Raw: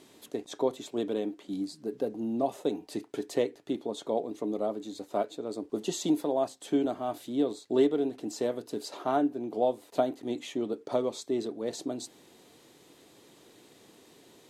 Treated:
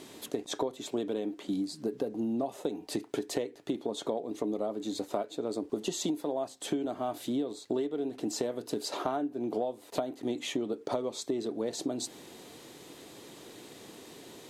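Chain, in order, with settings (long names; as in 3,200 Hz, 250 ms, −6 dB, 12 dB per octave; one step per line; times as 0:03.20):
downward compressor 12 to 1, threshold −36 dBFS, peak gain reduction 18 dB
level +7.5 dB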